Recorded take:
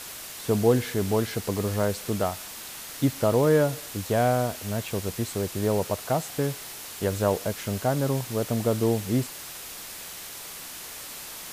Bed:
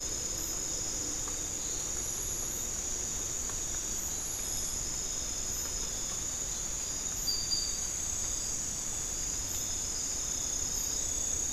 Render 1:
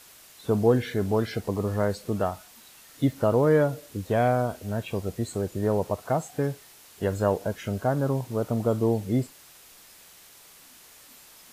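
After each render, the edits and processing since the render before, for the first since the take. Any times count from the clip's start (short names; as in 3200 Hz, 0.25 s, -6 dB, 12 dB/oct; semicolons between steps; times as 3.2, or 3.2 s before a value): noise print and reduce 12 dB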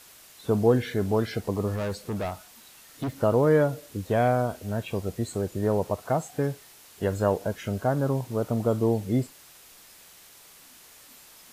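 1.75–3.13 hard clip -26.5 dBFS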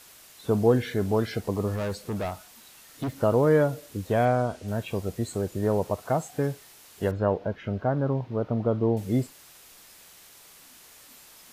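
4.25–4.68 LPF 8200 Hz; 7.11–8.97 air absorption 290 m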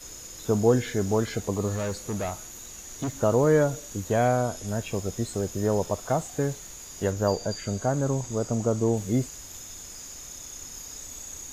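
add bed -7.5 dB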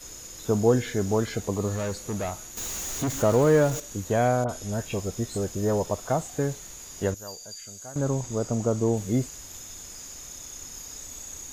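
2.57–3.8 zero-crossing step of -30 dBFS; 4.44–5.85 dispersion highs, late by 51 ms, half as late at 1800 Hz; 7.14–7.96 pre-emphasis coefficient 0.9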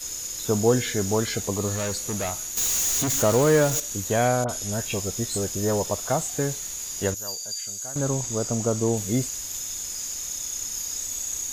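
high shelf 2400 Hz +11 dB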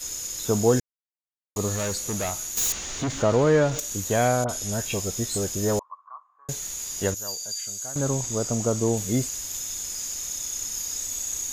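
0.8–1.56 mute; 2.72–3.79 air absorption 140 m; 5.79–6.49 Butterworth band-pass 1100 Hz, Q 7.5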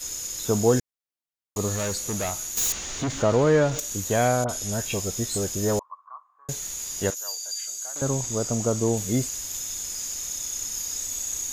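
7.1–8.02 HPF 710 Hz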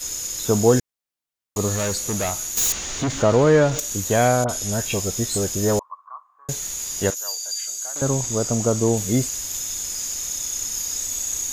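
gain +4 dB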